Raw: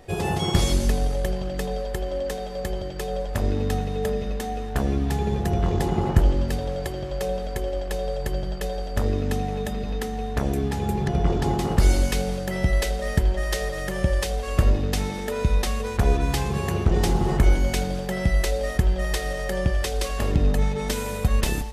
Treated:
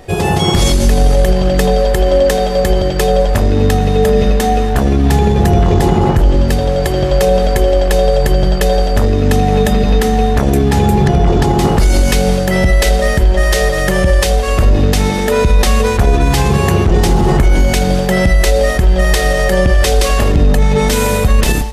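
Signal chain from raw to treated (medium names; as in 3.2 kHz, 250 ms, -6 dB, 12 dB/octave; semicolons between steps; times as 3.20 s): level rider gain up to 7 dB; loudness maximiser +12 dB; trim -1 dB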